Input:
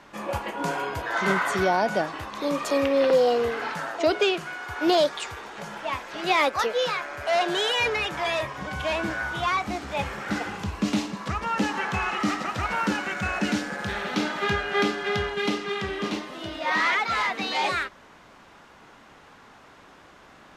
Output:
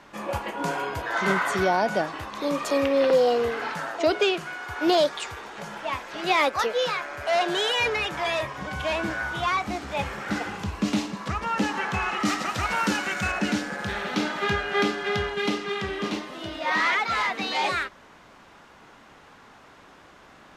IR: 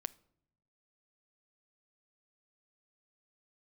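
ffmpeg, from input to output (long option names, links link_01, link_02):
-filter_complex "[0:a]asettb=1/sr,asplit=3[link_01][link_02][link_03];[link_01]atrim=end=12.254[link_04];[link_02]atrim=start=12.25:end=13.32,asetpts=PTS-STARTPTS,afade=type=in:duration=0.004:curve=qsin,afade=type=out:start_time=1.066:duration=0.004:curve=qsin,highshelf=frequency=3400:gain=8[link_05];[link_03]atrim=start=13.316[link_06];[link_04][link_05]acrossfade=duration=0.004:curve1=hsin:curve2=qsin[link_07];[link_07][link_06]acrossfade=duration=0.004:curve1=qsin:curve2=hsin"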